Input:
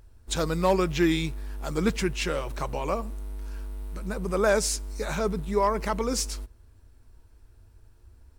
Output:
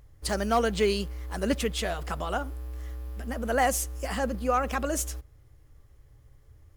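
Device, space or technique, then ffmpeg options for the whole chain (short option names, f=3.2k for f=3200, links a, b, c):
nightcore: -af "asetrate=54684,aresample=44100,volume=-1.5dB"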